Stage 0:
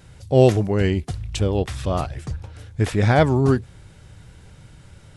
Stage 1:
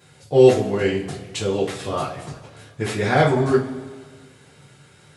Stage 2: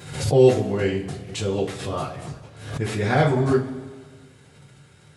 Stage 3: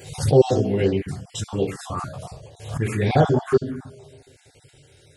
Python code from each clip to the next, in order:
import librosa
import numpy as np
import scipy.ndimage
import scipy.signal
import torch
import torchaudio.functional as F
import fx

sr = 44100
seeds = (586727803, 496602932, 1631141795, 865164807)

y1 = scipy.signal.sosfilt(scipy.signal.butter(2, 170.0, 'highpass', fs=sr, output='sos'), x)
y1 = fx.rev_double_slope(y1, sr, seeds[0], early_s=0.26, late_s=1.7, knee_db=-18, drr_db=-6.5)
y1 = y1 * 10.0 ** (-5.0 / 20.0)
y2 = fx.low_shelf(y1, sr, hz=160.0, db=7.5)
y2 = fx.pre_swell(y2, sr, db_per_s=80.0)
y2 = y2 * 10.0 ** (-4.0 / 20.0)
y3 = fx.spec_dropout(y2, sr, seeds[1], share_pct=24)
y3 = fx.env_phaser(y3, sr, low_hz=180.0, high_hz=2200.0, full_db=-17.5)
y3 = y3 * 10.0 ** (3.5 / 20.0)